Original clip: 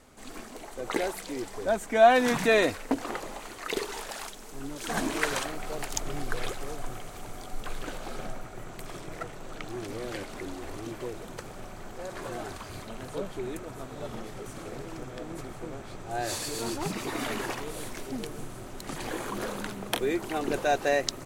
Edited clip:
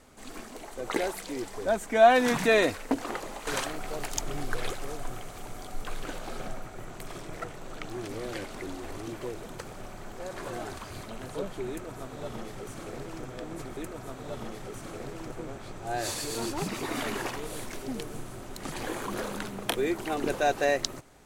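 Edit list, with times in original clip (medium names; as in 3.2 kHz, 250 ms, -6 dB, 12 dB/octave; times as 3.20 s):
3.47–5.26 s: delete
13.49–15.04 s: copy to 15.56 s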